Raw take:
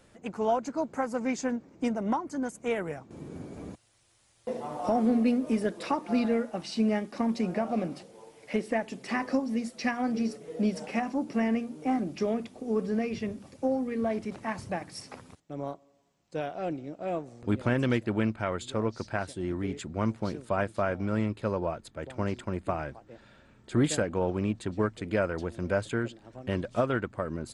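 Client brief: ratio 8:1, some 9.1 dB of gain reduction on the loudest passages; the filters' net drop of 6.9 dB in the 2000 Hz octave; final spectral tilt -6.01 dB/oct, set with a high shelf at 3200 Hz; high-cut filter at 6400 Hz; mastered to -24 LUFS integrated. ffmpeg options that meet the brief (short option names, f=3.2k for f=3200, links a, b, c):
-af "lowpass=6.4k,equalizer=f=2k:t=o:g=-7,highshelf=f=3.2k:g=-7.5,acompressor=threshold=-31dB:ratio=8,volume=13.5dB"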